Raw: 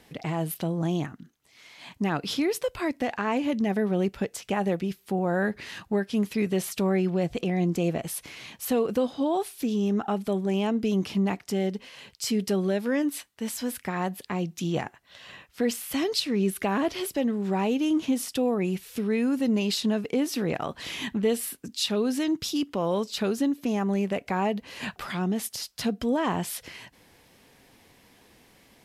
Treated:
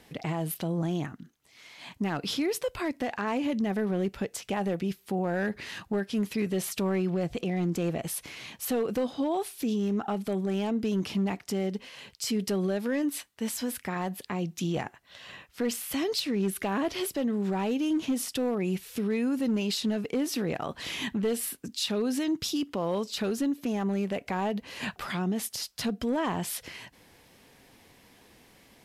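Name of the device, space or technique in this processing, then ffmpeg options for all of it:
clipper into limiter: -af "asoftclip=type=hard:threshold=0.112,alimiter=limit=0.0794:level=0:latency=1:release=42"

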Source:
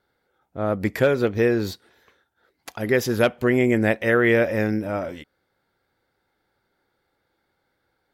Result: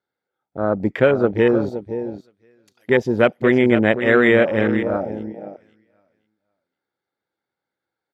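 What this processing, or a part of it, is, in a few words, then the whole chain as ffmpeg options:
over-cleaned archive recording: -filter_complex "[0:a]asettb=1/sr,asplit=3[s0][s1][s2];[s0]atrim=end=1.694[s3];[s1]atrim=start=1.69:end=2.89,asetpts=PTS-STARTPTS,afade=t=in:d=0.004:c=qsin,afade=t=out:st=1.196:d=0.004:c=qsin,aderivative[s4];[s2]atrim=start=2.886[s5];[s3][s4]acrossfade=d=0.004:c1=hsin:c2=qsin[s6];[s6][s5]acrossfade=d=0.004:c1=qsin:c2=hsin,highpass=120,lowpass=7100,aecho=1:1:518|1036|1554:0.316|0.0696|0.0153,afwtdn=0.0447,volume=1.58"

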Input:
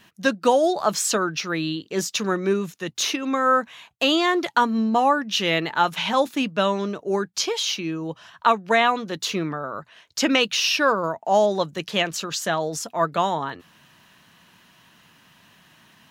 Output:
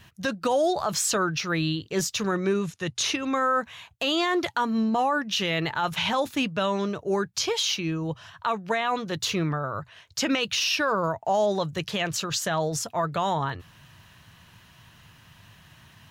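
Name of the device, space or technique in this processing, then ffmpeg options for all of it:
car stereo with a boomy subwoofer: -filter_complex "[0:a]lowshelf=f=150:t=q:w=1.5:g=12.5,alimiter=limit=0.168:level=0:latency=1:release=44,asettb=1/sr,asplit=3[s0][s1][s2];[s0]atrim=end=2.354[s3];[s1]atrim=start=2.35:end=3.15,asetpts=PTS-STARTPTS,afade=t=in:d=0.004:c=qsin,afade=t=out:st=0.796:d=0.004:c=qsin,lowpass=f=11000:w=0.5412,lowpass=f=11000:w=1.3066[s4];[s2]atrim=start=3.146[s5];[s3][s4]acrossfade=d=0.004:c1=hsin:c2=qsin[s6];[s6][s5]acrossfade=d=0.004:c1=qsin:c2=hsin"

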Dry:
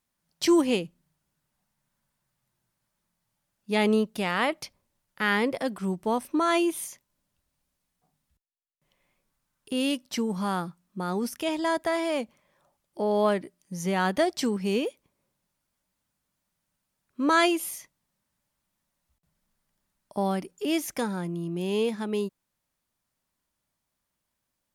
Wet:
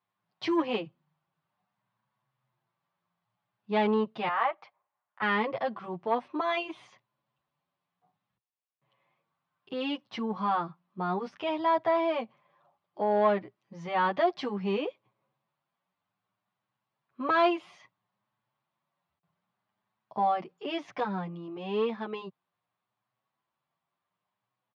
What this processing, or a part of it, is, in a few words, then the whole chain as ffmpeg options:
barber-pole flanger into a guitar amplifier: -filter_complex "[0:a]highpass=140,asettb=1/sr,asplit=3[s0][s1][s2];[s0]atrim=end=4.284[s3];[s1]atrim=start=4.28:end=5.22,asetpts=PTS-STARTPTS,afade=t=in:d=0.004:c=qsin,afade=t=out:st=0.936:d=0.004:c=qsin,acrossover=split=550 2100:gain=0.1 1 0.2[s4][s5][s6];[s4][s5][s6]amix=inputs=3:normalize=0[s7];[s2]atrim=start=5.216[s8];[s3][s7]acrossfade=d=0.004:c1=hsin:c2=qsin[s9];[s9][s8]acrossfade=d=0.004:c1=qsin:c2=hsin,asplit=2[s10][s11];[s11]adelay=8,afreqshift=0.62[s12];[s10][s12]amix=inputs=2:normalize=1,asoftclip=type=tanh:threshold=0.112,highpass=85,equalizer=f=120:t=q:w=4:g=10,equalizer=f=260:t=q:w=4:g=-6,equalizer=f=750:t=q:w=4:g=7,equalizer=f=1100:t=q:w=4:g=9,lowpass=f=3700:w=0.5412,lowpass=f=3700:w=1.3066"

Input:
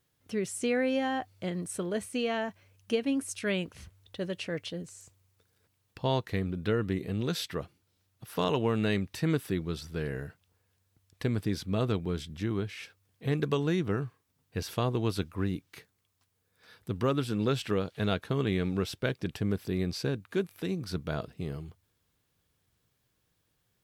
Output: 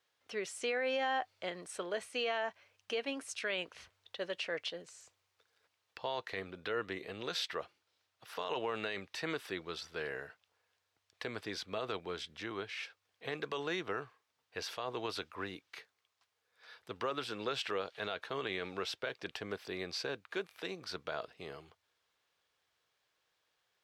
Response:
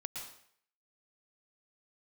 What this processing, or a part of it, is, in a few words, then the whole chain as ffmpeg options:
DJ mixer with the lows and highs turned down: -filter_complex "[0:a]acrossover=split=470 6100:gain=0.0708 1 0.178[s0][s1][s2];[s0][s1][s2]amix=inputs=3:normalize=0,alimiter=level_in=1.5:limit=0.0631:level=0:latency=1:release=33,volume=0.668,volume=1.19"

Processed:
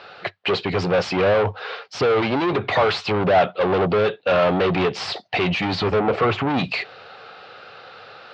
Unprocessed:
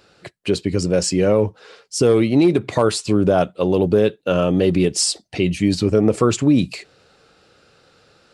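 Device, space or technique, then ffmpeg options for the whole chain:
overdrive pedal into a guitar cabinet: -filter_complex "[0:a]asplit=2[s0][s1];[s1]highpass=f=720:p=1,volume=28.2,asoftclip=type=tanh:threshold=0.708[s2];[s0][s2]amix=inputs=2:normalize=0,lowpass=f=4200:p=1,volume=0.501,highpass=92,equalizer=f=98:t=q:w=4:g=9,equalizer=f=220:t=q:w=4:g=-3,equalizer=f=310:t=q:w=4:g=-8,equalizer=f=750:t=q:w=4:g=6,equalizer=f=1200:t=q:w=4:g=3,lowpass=f=4100:w=0.5412,lowpass=f=4100:w=1.3066,asettb=1/sr,asplit=3[s3][s4][s5];[s3]atrim=end=5.994[s6];[s4]atrim=start=5.99:end=6.48,asetpts=PTS-STARTPTS,afade=t=in:d=0.004:c=qsin,afade=t=out:st=0.486:d=0.004:c=qsin,aemphasis=mode=reproduction:type=75fm[s7];[s5]atrim=start=6.476[s8];[s6][s7]acrossfade=d=0.004:c1=hsin:c2=qsin[s9];[s9][s8]acrossfade=d=0.004:c1=qsin:c2=hsin,volume=0.398"

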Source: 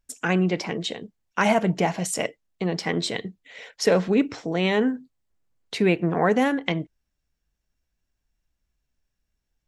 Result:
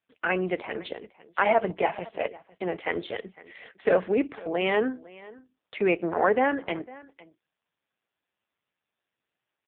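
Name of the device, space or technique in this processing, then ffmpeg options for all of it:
satellite phone: -af "highpass=390,lowpass=3100,aecho=1:1:505:0.0891,volume=1.19" -ar 8000 -c:a libopencore_amrnb -b:a 5150

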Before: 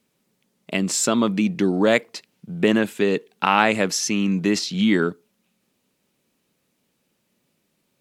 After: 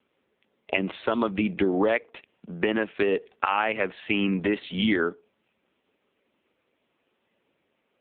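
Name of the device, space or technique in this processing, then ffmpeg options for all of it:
voicemail: -af "highpass=350,lowpass=3300,acompressor=threshold=0.0562:ratio=10,volume=2.11" -ar 8000 -c:a libopencore_amrnb -b:a 5900

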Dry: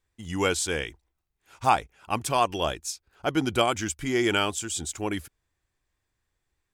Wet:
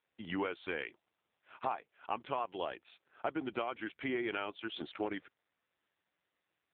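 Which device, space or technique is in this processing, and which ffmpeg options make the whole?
voicemail: -filter_complex "[0:a]asettb=1/sr,asplit=3[s0][s1][s2];[s0]atrim=end=1.694[s3];[s1]atrim=start=1.69:end=2.39,asetpts=PTS-STARTPTS,afade=t=in:d=0.004:c=qsin,afade=t=out:st=0.696:d=0.004:c=qsin,adynamicequalizer=threshold=0.00355:dfrequency=4400:dqfactor=1.8:tfrequency=4400:tqfactor=1.8:attack=5:release=100:ratio=0.375:range=2:mode=cutabove:tftype=bell[s4];[s2]atrim=start=2.386[s5];[s3][s4]acrossfade=d=0.004:c1=hsin:c2=qsin[s6];[s6][s5]acrossfade=d=0.004:c1=qsin:c2=hsin,highpass=320,lowpass=3200,acompressor=threshold=0.0158:ratio=8,volume=1.5" -ar 8000 -c:a libopencore_amrnb -b:a 5900

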